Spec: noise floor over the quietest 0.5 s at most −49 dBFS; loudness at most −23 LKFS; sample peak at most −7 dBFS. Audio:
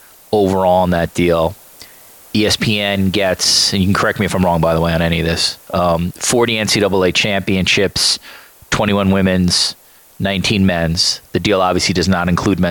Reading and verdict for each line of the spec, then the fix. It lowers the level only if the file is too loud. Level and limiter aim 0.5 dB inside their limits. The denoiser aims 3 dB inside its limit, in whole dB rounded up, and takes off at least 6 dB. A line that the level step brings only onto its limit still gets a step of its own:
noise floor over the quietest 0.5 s −41 dBFS: out of spec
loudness −14.5 LKFS: out of spec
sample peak −3.0 dBFS: out of spec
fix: level −9 dB

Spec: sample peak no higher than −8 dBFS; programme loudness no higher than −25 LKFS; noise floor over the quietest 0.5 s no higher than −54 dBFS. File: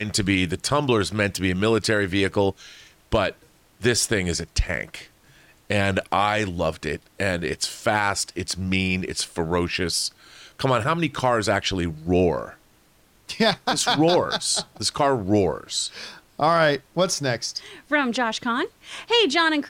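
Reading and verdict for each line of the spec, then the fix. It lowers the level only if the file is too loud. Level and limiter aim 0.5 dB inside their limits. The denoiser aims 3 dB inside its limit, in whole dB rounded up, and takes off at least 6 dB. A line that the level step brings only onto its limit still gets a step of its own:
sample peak −9.0 dBFS: in spec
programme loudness −23.0 LKFS: out of spec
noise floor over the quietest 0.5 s −58 dBFS: in spec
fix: level −2.5 dB

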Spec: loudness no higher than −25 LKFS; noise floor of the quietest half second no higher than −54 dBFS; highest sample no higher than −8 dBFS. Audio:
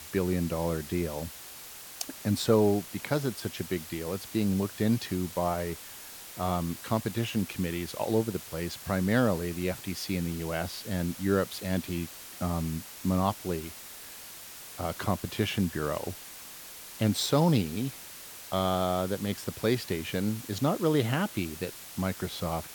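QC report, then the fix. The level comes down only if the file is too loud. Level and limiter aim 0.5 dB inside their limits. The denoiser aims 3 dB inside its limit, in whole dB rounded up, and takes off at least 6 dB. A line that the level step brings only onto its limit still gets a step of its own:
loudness −30.5 LKFS: in spec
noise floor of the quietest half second −45 dBFS: out of spec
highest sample −10.5 dBFS: in spec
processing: broadband denoise 12 dB, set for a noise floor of −45 dBFS

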